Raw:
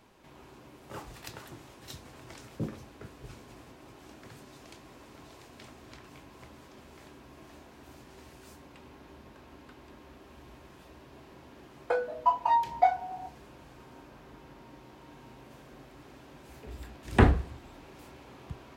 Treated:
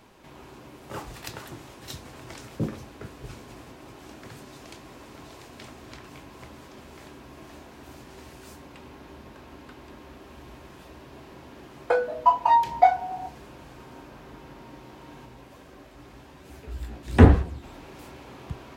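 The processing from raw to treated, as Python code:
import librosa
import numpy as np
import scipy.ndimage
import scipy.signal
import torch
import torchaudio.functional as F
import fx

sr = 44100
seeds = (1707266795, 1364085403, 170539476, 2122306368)

y = fx.chorus_voices(x, sr, voices=6, hz=1.2, base_ms=14, depth_ms=3.8, mix_pct=45, at=(15.25, 17.62), fade=0.02)
y = F.gain(torch.from_numpy(y), 6.0).numpy()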